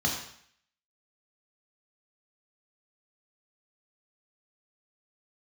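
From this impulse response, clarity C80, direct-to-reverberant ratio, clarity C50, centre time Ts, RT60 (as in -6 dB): 7.0 dB, -1.0 dB, 4.5 dB, 36 ms, 0.60 s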